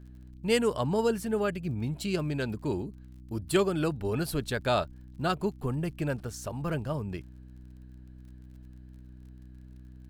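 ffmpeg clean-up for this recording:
-af "adeclick=t=4,bandreject=f=62.7:t=h:w=4,bandreject=f=125.4:t=h:w=4,bandreject=f=188.1:t=h:w=4,bandreject=f=250.8:t=h:w=4,bandreject=f=313.5:t=h:w=4"

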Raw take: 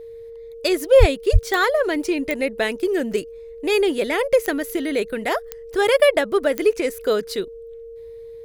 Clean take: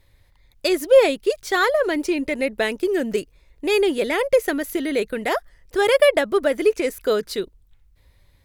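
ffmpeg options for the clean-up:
-filter_complex "[0:a]adeclick=t=4,bandreject=f=460:w=30,asplit=3[a][b][c];[a]afade=t=out:st=0.99:d=0.02[d];[b]highpass=f=140:w=0.5412,highpass=f=140:w=1.3066,afade=t=in:st=0.99:d=0.02,afade=t=out:st=1.11:d=0.02[e];[c]afade=t=in:st=1.11:d=0.02[f];[d][e][f]amix=inputs=3:normalize=0,asplit=3[g][h][i];[g]afade=t=out:st=1.32:d=0.02[j];[h]highpass=f=140:w=0.5412,highpass=f=140:w=1.3066,afade=t=in:st=1.32:d=0.02,afade=t=out:st=1.44:d=0.02[k];[i]afade=t=in:st=1.44:d=0.02[l];[j][k][l]amix=inputs=3:normalize=0"

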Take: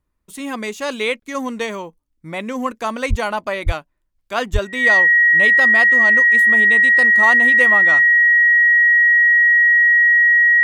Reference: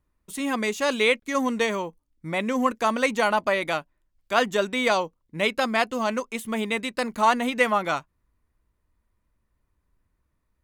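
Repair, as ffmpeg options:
-filter_complex "[0:a]bandreject=f=1.9k:w=30,asplit=3[a][b][c];[a]afade=t=out:st=3.09:d=0.02[d];[b]highpass=f=140:w=0.5412,highpass=f=140:w=1.3066,afade=t=in:st=3.09:d=0.02,afade=t=out:st=3.21:d=0.02[e];[c]afade=t=in:st=3.21:d=0.02[f];[d][e][f]amix=inputs=3:normalize=0,asplit=3[g][h][i];[g]afade=t=out:st=3.65:d=0.02[j];[h]highpass=f=140:w=0.5412,highpass=f=140:w=1.3066,afade=t=in:st=3.65:d=0.02,afade=t=out:st=3.77:d=0.02[k];[i]afade=t=in:st=3.77:d=0.02[l];[j][k][l]amix=inputs=3:normalize=0,asplit=3[m][n][o];[m]afade=t=out:st=4.52:d=0.02[p];[n]highpass=f=140:w=0.5412,highpass=f=140:w=1.3066,afade=t=in:st=4.52:d=0.02,afade=t=out:st=4.64:d=0.02[q];[o]afade=t=in:st=4.64:d=0.02[r];[p][q][r]amix=inputs=3:normalize=0"

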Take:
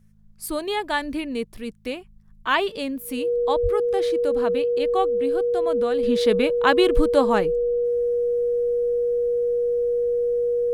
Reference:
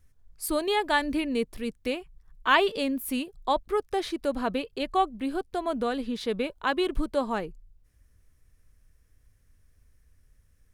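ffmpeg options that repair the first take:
-filter_complex "[0:a]bandreject=f=52.7:t=h:w=4,bandreject=f=105.4:t=h:w=4,bandreject=f=158.1:t=h:w=4,bandreject=f=210.8:t=h:w=4,bandreject=f=480:w=30,asplit=3[a][b][c];[a]afade=t=out:st=3.62:d=0.02[d];[b]highpass=f=140:w=0.5412,highpass=f=140:w=1.3066,afade=t=in:st=3.62:d=0.02,afade=t=out:st=3.74:d=0.02[e];[c]afade=t=in:st=3.74:d=0.02[f];[d][e][f]amix=inputs=3:normalize=0,asetnsamples=n=441:p=0,asendcmd='6.03 volume volume -8dB',volume=0dB"

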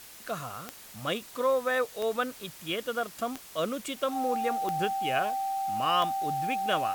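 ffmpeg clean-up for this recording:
-af "adeclick=t=4,bandreject=f=780:w=30,afftdn=nr=27:nf=-48"

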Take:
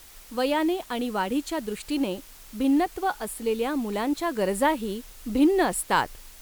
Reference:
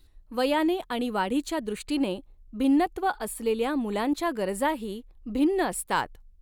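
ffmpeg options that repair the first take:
-af "afwtdn=0.0035,asetnsamples=n=441:p=0,asendcmd='4.36 volume volume -3.5dB',volume=0dB"

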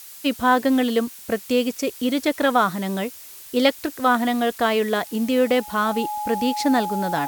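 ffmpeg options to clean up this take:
-af "bandreject=f=840:w=30,afftdn=nr=25:nf=-41"

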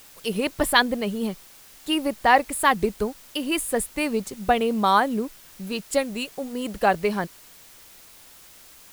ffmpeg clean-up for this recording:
-af "afftdn=nr=19:nf=-49"

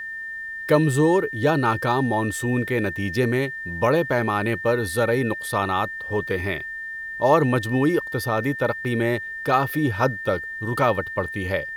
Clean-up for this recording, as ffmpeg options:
-af "bandreject=f=1.8k:w=30,agate=range=-21dB:threshold=-25dB"

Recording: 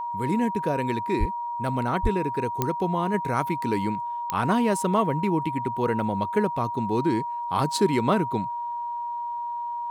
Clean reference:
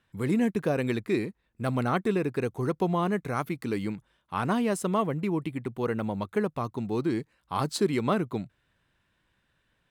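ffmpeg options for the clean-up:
-filter_complex "[0:a]adeclick=t=4,bandreject=f=950:w=30,asplit=3[a][b][c];[a]afade=t=out:st=1.19:d=0.02[d];[b]highpass=f=140:w=0.5412,highpass=f=140:w=1.3066,afade=t=in:st=1.19:d=0.02,afade=t=out:st=1.31:d=0.02[e];[c]afade=t=in:st=1.31:d=0.02[f];[d][e][f]amix=inputs=3:normalize=0,asplit=3[g][h][i];[g]afade=t=out:st=2.02:d=0.02[j];[h]highpass=f=140:w=0.5412,highpass=f=140:w=1.3066,afade=t=in:st=2.02:d=0.02,afade=t=out:st=2.14:d=0.02[k];[i]afade=t=in:st=2.14:d=0.02[l];[j][k][l]amix=inputs=3:normalize=0,asetnsamples=n=441:p=0,asendcmd='3.14 volume volume -3.5dB',volume=0dB"

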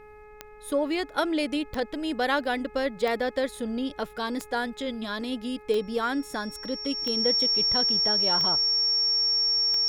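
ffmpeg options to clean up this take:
-af "adeclick=t=4,bandreject=f=422.6:t=h:w=4,bandreject=f=845.2:t=h:w=4,bandreject=f=1.2678k:t=h:w=4,bandreject=f=1.6904k:t=h:w=4,bandreject=f=2.113k:t=h:w=4,bandreject=f=2.5356k:t=h:w=4,bandreject=f=5.5k:w=30,agate=range=-21dB:threshold=-39dB"

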